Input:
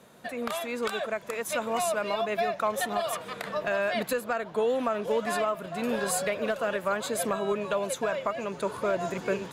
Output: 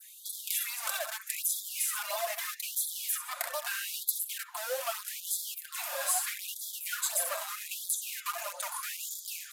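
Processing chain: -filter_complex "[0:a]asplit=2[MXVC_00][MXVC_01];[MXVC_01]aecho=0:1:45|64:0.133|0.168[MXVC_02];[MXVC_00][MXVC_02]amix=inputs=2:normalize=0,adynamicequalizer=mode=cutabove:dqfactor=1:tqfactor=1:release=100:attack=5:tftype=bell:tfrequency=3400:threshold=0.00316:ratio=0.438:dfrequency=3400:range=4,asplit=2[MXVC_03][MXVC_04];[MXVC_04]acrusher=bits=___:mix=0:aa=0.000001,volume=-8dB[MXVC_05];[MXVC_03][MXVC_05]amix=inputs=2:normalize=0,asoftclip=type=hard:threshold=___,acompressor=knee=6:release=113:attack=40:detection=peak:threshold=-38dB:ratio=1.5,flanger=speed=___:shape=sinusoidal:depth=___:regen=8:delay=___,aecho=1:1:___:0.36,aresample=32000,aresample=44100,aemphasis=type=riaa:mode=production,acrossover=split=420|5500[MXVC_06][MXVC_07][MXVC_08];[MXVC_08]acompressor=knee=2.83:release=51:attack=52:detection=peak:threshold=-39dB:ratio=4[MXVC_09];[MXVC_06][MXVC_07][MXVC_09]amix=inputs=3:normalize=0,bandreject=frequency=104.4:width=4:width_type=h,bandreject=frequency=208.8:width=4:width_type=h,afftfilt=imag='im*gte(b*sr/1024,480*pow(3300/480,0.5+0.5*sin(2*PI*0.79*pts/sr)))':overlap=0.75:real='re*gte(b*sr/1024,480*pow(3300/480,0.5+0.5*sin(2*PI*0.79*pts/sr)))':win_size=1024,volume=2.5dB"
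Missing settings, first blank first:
4, -25.5dB, 1.4, 6.3, 0.2, 5.7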